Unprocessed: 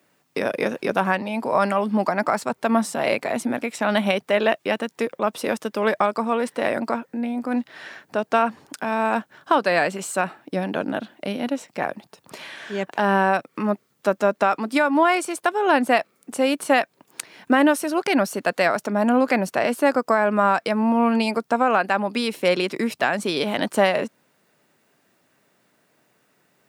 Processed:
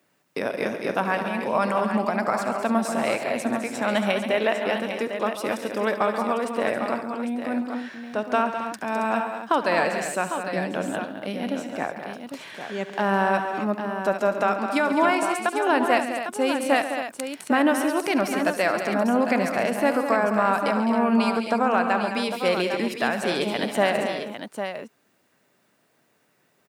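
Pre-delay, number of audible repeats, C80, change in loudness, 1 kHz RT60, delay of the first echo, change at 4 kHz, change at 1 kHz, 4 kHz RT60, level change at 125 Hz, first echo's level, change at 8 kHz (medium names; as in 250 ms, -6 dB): no reverb, 5, no reverb, -2.0 dB, no reverb, 71 ms, -2.0 dB, -2.0 dB, no reverb, -2.0 dB, -14.5 dB, -2.0 dB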